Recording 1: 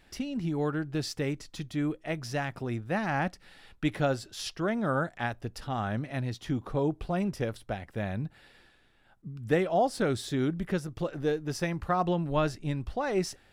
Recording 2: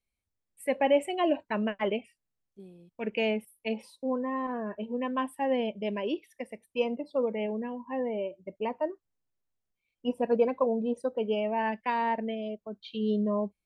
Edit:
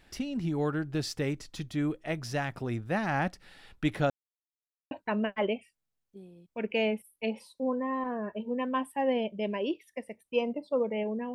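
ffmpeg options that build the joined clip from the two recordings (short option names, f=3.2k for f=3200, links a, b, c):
-filter_complex "[0:a]apad=whole_dur=11.34,atrim=end=11.34,asplit=2[a][b];[a]atrim=end=4.1,asetpts=PTS-STARTPTS,afade=t=out:st=4.096:d=0.004:c=hsin[c];[b]atrim=start=4.1:end=4.91,asetpts=PTS-STARTPTS,volume=0[d];[1:a]atrim=start=1.34:end=7.77,asetpts=PTS-STARTPTS,afade=t=in:d=0.004:c=hsin[e];[c][d][e]concat=n=3:v=0:a=1"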